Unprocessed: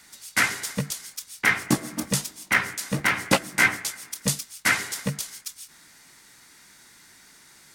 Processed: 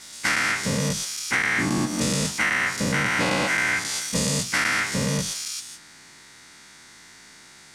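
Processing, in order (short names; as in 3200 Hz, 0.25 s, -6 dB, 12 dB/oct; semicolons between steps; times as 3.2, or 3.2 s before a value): spectral dilation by 0.24 s; LPF 7800 Hz 12 dB/oct; compressor 6:1, threshold -20 dBFS, peak gain reduction 10.5 dB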